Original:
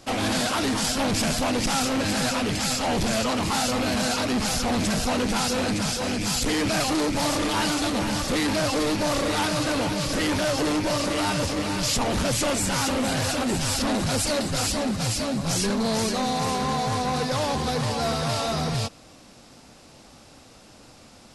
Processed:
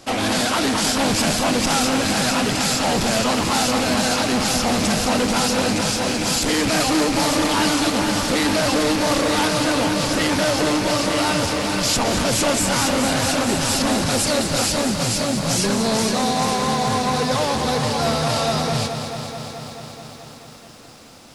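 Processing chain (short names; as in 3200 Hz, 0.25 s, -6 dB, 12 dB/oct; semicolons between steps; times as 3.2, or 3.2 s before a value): low shelf 110 Hz -6.5 dB; lo-fi delay 0.216 s, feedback 80%, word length 9-bit, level -9 dB; gain +4.5 dB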